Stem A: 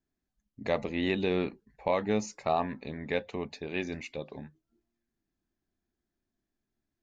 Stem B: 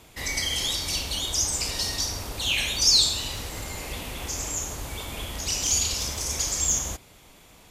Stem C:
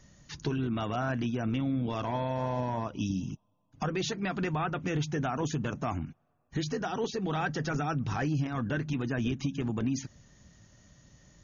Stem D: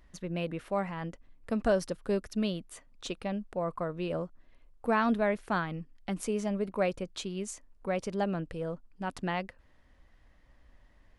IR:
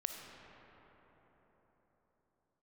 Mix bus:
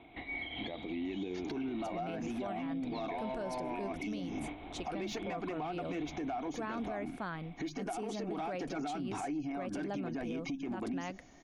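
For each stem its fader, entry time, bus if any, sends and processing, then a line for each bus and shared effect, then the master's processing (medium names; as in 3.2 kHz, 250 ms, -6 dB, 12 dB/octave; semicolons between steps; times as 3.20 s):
+1.5 dB, 0.00 s, bus A, no send, expander on every frequency bin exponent 1.5; compression, threshold -38 dBFS, peak gain reduction 13.5 dB
-4.0 dB, 0.00 s, bus A, no send, Chebyshev low-pass 3.9 kHz, order 8; compression 6:1, threshold -37 dBFS, peak gain reduction 14.5 dB; random flutter of the level
0.0 dB, 1.05 s, bus A, no send, tone controls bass -14 dB, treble -3 dB; saturation -29.5 dBFS, distortion -15 dB
-5.5 dB, 1.70 s, no bus, no send, none
bus A: 0.0 dB, small resonant body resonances 300/710/2200 Hz, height 16 dB, ringing for 30 ms; compression, threshold -32 dBFS, peak gain reduction 11.5 dB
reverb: none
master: peak limiter -30.5 dBFS, peak gain reduction 11 dB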